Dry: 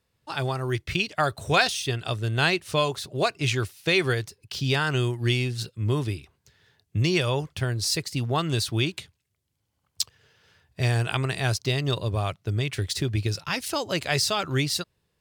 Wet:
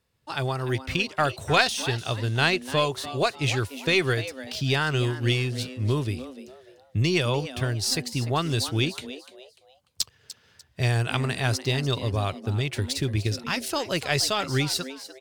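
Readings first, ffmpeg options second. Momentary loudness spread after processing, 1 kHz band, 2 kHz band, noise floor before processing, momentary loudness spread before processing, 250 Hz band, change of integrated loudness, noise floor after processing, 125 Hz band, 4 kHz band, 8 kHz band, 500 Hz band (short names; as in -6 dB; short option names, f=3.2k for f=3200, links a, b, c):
9 LU, +0.5 dB, +0.5 dB, -76 dBFS, 7 LU, +0.5 dB, 0.0 dB, -62 dBFS, 0.0 dB, +0.5 dB, 0.0 dB, +0.5 dB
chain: -filter_complex "[0:a]asplit=4[a][b][c][d];[b]adelay=296,afreqshift=130,volume=-14dB[e];[c]adelay=592,afreqshift=260,volume=-23.9dB[f];[d]adelay=888,afreqshift=390,volume=-33.8dB[g];[a][e][f][g]amix=inputs=4:normalize=0,aeval=exprs='0.562*(cos(1*acos(clip(val(0)/0.562,-1,1)))-cos(1*PI/2))+0.0891*(cos(2*acos(clip(val(0)/0.562,-1,1)))-cos(2*PI/2))':c=same"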